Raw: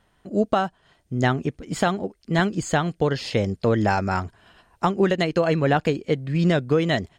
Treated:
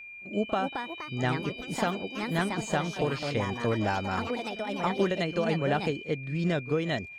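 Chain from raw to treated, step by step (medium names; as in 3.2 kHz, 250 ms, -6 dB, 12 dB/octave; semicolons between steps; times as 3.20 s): reverse echo 38 ms -16.5 dB; whistle 2.4 kHz -34 dBFS; ever faster or slower copies 334 ms, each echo +4 st, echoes 3, each echo -6 dB; trim -8 dB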